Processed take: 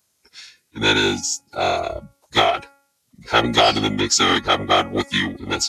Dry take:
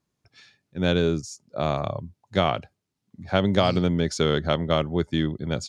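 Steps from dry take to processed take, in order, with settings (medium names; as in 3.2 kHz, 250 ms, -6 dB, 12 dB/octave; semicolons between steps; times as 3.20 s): RIAA curve recording; formant-preserving pitch shift -9 st; de-hum 278.6 Hz, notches 9; trim +8 dB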